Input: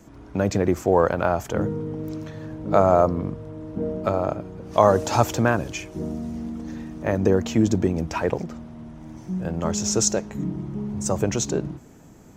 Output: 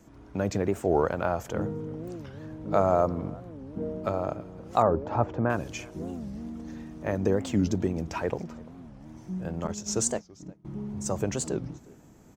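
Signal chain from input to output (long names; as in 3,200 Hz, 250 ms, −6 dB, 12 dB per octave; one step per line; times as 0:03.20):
0:04.84–0:05.50: low-pass filter 1,300 Hz 12 dB per octave
0:09.67–0:10.65: noise gate −24 dBFS, range −25 dB
slap from a distant wall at 59 metres, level −23 dB
wow of a warped record 45 rpm, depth 250 cents
level −6 dB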